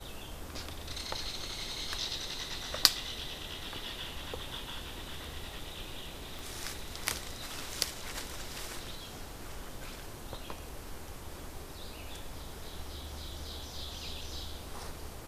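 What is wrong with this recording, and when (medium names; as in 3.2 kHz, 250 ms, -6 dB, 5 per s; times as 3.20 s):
6.39 s: pop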